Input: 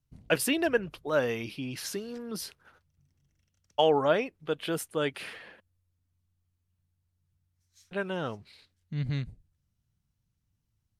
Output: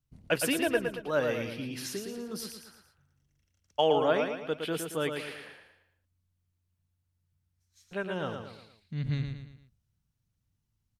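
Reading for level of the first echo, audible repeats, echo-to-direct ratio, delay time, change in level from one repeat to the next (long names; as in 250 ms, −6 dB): −6.0 dB, 4, −5.0 dB, 113 ms, −7.0 dB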